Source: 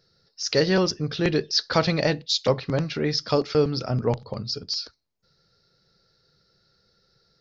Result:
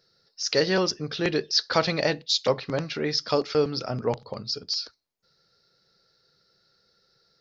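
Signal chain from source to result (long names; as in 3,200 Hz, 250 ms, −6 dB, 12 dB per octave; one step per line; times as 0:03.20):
low-shelf EQ 190 Hz −11 dB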